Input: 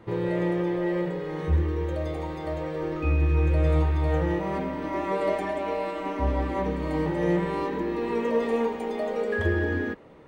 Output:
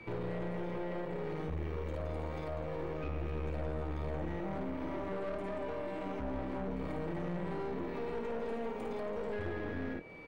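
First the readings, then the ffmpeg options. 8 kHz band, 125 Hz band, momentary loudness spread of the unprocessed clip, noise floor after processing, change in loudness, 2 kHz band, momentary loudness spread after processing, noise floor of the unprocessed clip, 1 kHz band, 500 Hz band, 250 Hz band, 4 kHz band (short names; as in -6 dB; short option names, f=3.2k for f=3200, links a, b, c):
n/a, -13.5 dB, 8 LU, -40 dBFS, -12.0 dB, -13.0 dB, 1 LU, -35 dBFS, -11.5 dB, -11.0 dB, -11.5 dB, -11.0 dB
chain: -filter_complex "[0:a]aecho=1:1:53|76:0.631|0.178,aeval=exprs='val(0)+0.00398*sin(2*PI*2300*n/s)':c=same,acrossover=split=130|520[a][b][c];[a]acompressor=threshold=-37dB:ratio=4[d];[b]acompressor=threshold=-30dB:ratio=4[e];[c]acompressor=threshold=-42dB:ratio=4[f];[d][e][f]amix=inputs=3:normalize=0,aeval=exprs='(tanh(39.8*val(0)+0.75)-tanh(0.75))/39.8':c=same,alimiter=level_in=7dB:limit=-24dB:level=0:latency=1:release=34,volume=-7dB,volume=1dB"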